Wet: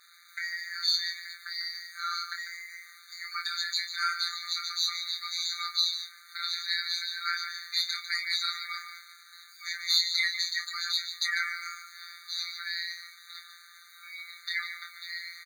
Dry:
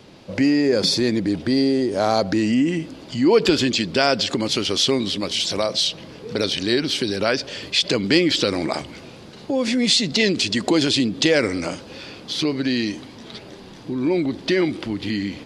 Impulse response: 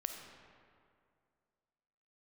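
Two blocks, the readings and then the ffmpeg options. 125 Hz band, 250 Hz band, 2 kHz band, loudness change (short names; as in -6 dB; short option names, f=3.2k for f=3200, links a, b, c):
under -40 dB, under -40 dB, -5.5 dB, -10.0 dB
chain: -filter_complex "[0:a]equalizer=f=9.2k:t=o:w=0.45:g=-10,asplit=2[a][b];[b]adelay=31,volume=-8dB[c];[a][c]amix=inputs=2:normalize=0,asplit=2[d][e];[e]aecho=0:1:148:0.316[f];[d][f]amix=inputs=2:normalize=0,flanger=delay=17.5:depth=7:speed=0.72,afftfilt=real='hypot(re,im)*cos(PI*b)':imag='0':win_size=1024:overlap=0.75,asoftclip=type=tanh:threshold=-9dB,lowshelf=f=120:g=9,acrusher=bits=8:mix=0:aa=0.000001,afftfilt=real='re*eq(mod(floor(b*sr/1024/1200),2),1)':imag='im*eq(mod(floor(b*sr/1024/1200),2),1)':win_size=1024:overlap=0.75,volume=3dB"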